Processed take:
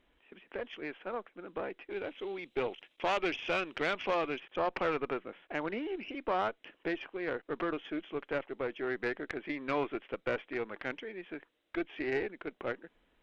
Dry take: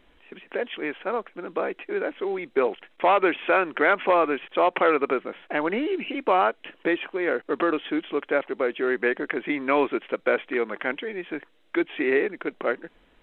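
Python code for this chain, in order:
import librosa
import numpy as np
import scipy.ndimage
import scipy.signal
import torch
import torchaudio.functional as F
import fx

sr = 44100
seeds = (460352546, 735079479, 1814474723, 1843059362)

y = fx.high_shelf_res(x, sr, hz=2200.0, db=6.5, q=1.5, at=(1.9, 4.4))
y = fx.tube_stage(y, sr, drive_db=14.0, bias=0.6)
y = F.gain(torch.from_numpy(y), -8.0).numpy()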